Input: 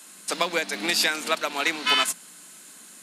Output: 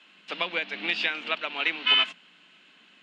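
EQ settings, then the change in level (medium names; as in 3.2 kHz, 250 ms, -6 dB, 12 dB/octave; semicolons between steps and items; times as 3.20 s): four-pole ladder low-pass 3.2 kHz, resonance 65%; +3.5 dB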